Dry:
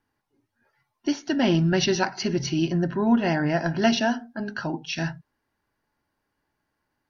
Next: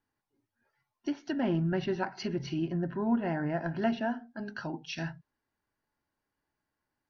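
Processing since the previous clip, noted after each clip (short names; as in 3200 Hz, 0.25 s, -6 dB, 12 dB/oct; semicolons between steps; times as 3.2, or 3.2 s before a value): treble ducked by the level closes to 1800 Hz, closed at -19.5 dBFS; gain -8 dB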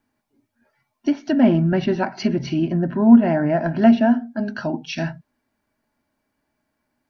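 small resonant body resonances 240/620/2300 Hz, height 10 dB; gain +8.5 dB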